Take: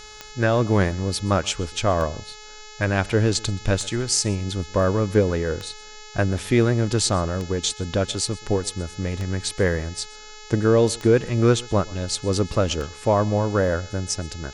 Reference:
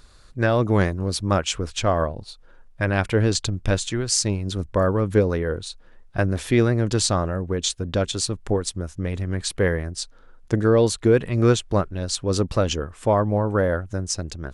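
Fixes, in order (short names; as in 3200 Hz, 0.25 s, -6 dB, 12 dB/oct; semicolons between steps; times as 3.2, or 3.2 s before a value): de-click; de-hum 426.4 Hz, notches 17; inverse comb 0.126 s -23 dB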